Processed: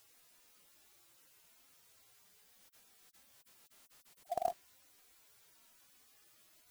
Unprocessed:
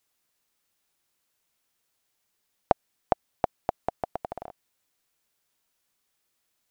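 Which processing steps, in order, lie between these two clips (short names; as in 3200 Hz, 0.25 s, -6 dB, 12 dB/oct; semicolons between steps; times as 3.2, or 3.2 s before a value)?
median-filter separation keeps harmonic; short-mantissa float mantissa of 2-bit; gain +14.5 dB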